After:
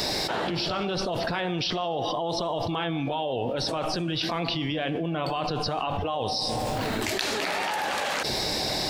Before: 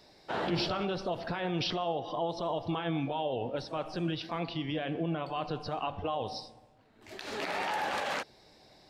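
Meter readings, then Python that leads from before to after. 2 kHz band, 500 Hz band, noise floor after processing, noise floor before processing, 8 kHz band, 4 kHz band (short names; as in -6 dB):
+7.5 dB, +5.5 dB, -30 dBFS, -60 dBFS, +15.5 dB, +10.5 dB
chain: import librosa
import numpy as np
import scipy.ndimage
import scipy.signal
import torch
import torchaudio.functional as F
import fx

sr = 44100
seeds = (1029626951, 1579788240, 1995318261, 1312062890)

y = fx.high_shelf(x, sr, hz=4400.0, db=9.0)
y = fx.env_flatten(y, sr, amount_pct=100)
y = y * librosa.db_to_amplitude(-1.0)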